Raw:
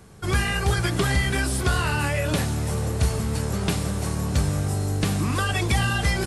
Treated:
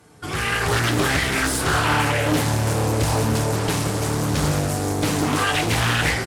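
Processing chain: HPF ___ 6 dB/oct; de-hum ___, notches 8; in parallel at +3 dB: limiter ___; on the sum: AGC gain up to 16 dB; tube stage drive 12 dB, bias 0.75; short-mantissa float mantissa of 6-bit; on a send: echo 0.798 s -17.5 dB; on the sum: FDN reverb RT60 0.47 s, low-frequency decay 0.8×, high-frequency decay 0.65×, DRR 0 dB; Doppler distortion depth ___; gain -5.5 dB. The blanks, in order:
170 Hz, 280.7 Hz, -21 dBFS, 0.61 ms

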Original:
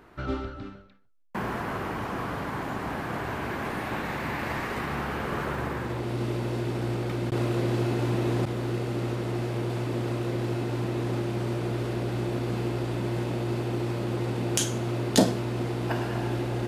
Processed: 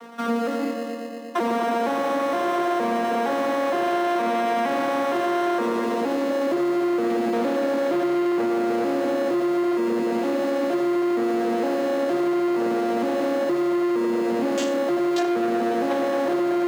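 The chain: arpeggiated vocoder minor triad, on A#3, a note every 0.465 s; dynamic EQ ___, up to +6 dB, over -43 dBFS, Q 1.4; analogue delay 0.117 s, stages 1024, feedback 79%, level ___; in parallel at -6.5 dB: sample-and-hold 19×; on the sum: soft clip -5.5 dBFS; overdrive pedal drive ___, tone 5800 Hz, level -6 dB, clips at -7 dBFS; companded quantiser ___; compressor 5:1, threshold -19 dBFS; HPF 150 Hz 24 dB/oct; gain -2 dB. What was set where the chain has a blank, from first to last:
530 Hz, -10 dB, 25 dB, 8-bit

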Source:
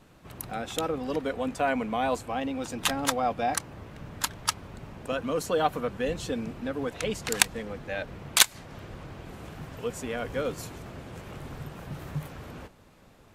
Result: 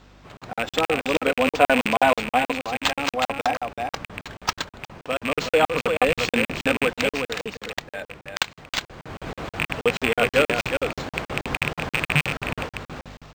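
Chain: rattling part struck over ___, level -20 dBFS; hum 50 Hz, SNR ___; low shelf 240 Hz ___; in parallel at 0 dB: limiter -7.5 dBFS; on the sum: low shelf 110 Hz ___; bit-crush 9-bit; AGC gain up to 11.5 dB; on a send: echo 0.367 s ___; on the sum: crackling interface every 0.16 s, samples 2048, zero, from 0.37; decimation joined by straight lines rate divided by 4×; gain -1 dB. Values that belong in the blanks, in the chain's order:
-36 dBFS, 18 dB, -12 dB, +3 dB, -6 dB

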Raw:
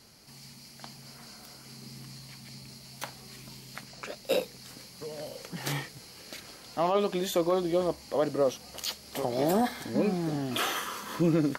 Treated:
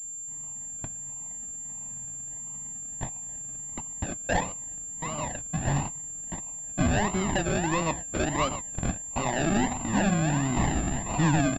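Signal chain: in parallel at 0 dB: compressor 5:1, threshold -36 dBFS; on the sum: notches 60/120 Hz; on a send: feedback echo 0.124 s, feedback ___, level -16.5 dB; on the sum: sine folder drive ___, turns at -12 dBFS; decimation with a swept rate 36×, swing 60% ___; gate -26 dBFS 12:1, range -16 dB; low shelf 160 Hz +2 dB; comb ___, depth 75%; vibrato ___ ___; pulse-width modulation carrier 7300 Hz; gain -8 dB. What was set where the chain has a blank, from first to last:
42%, 5 dB, 1.5 Hz, 1.1 ms, 0.86 Hz, 88 cents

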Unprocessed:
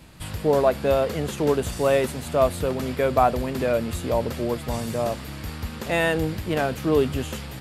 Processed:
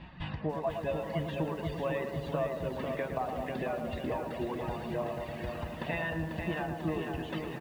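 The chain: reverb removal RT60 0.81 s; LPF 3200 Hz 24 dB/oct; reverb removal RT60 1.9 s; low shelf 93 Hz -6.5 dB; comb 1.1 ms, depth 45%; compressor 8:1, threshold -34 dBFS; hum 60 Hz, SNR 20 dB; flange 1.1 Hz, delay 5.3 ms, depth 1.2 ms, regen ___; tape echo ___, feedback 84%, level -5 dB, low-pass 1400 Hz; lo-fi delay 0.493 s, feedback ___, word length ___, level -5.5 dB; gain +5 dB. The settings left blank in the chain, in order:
+52%, 0.111 s, 55%, 10-bit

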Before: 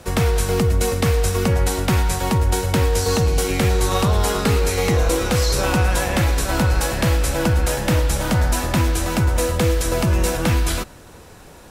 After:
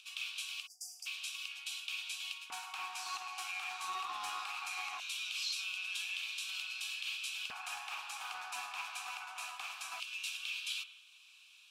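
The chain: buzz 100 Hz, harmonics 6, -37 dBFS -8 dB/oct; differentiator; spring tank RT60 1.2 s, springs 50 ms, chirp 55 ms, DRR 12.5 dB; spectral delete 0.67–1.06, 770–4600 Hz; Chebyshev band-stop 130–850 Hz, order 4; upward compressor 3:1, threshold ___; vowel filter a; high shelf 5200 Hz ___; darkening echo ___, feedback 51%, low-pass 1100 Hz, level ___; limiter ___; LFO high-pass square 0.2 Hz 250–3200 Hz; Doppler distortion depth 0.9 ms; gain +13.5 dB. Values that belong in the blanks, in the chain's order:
-48 dBFS, -3.5 dB, 0.83 s, -23 dB, -44.5 dBFS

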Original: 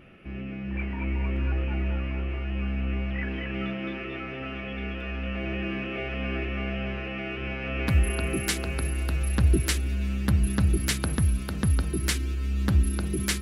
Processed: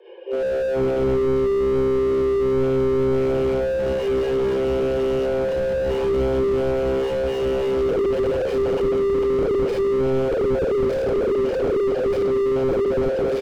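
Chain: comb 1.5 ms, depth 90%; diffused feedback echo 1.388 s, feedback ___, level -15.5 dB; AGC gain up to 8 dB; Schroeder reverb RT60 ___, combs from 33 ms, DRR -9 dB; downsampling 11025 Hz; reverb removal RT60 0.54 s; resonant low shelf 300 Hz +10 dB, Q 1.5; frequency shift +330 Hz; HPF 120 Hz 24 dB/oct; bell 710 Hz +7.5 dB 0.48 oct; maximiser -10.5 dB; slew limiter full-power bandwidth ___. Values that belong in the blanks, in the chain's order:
69%, 0.5 s, 47 Hz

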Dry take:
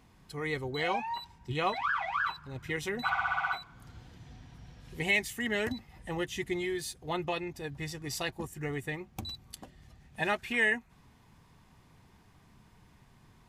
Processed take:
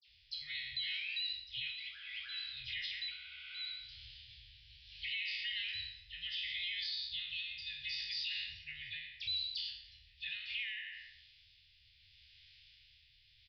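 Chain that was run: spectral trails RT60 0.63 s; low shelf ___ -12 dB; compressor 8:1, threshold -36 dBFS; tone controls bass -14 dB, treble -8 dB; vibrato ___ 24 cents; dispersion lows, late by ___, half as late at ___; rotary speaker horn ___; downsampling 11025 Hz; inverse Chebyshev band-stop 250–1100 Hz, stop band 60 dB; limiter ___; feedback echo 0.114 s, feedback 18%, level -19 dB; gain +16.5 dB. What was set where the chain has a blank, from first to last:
480 Hz, 11 Hz, 75 ms, 2700 Hz, 0.7 Hz, -47.5 dBFS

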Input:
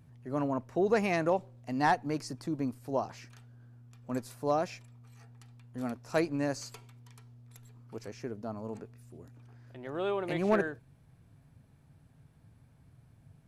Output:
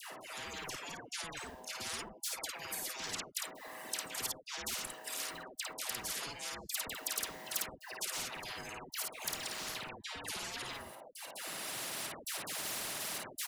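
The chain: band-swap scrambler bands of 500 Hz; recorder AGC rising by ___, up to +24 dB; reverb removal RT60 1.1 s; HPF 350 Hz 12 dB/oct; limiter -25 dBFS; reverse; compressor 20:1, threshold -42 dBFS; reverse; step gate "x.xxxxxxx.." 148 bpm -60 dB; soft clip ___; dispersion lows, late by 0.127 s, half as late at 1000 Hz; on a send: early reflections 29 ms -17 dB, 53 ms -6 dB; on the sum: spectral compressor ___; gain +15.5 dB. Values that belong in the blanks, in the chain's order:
11 dB/s, -36.5 dBFS, 10:1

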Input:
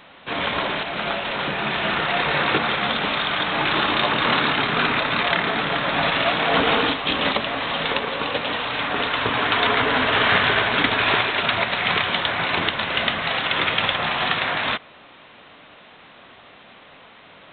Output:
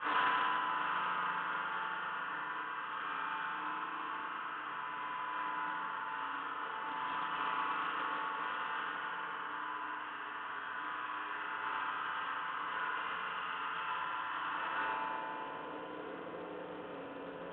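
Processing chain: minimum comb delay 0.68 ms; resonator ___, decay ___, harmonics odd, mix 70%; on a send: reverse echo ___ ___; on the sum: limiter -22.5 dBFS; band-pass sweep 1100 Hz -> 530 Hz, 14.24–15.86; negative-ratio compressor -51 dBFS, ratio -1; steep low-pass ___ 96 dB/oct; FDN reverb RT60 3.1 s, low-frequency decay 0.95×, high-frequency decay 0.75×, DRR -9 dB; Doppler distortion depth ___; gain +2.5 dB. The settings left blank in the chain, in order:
59 Hz, 0.62 s, 0.259 s, -9.5 dB, 3500 Hz, 0.12 ms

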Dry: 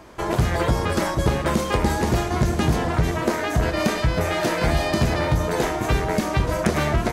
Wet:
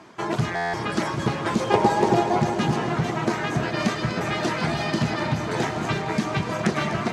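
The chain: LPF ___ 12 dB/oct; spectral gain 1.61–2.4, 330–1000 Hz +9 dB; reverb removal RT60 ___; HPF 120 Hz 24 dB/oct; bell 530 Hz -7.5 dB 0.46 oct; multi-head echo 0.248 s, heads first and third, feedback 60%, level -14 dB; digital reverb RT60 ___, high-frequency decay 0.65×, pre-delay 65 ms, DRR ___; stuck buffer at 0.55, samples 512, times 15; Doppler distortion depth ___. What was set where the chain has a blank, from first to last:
7200 Hz, 1.6 s, 4.4 s, 6 dB, 0.14 ms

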